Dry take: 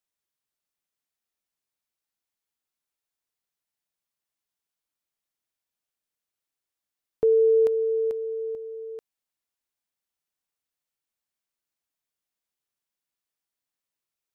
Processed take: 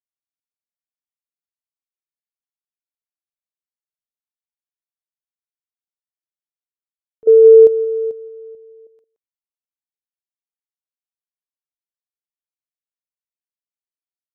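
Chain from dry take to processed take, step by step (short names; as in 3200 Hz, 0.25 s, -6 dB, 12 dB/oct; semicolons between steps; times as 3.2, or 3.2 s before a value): 7.27–8.87 resonant low shelf 780 Hz +11 dB, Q 1.5; on a send: echo 0.172 s -16.5 dB; on the sum: upward expander 2.5:1, over -17 dBFS; gain -1 dB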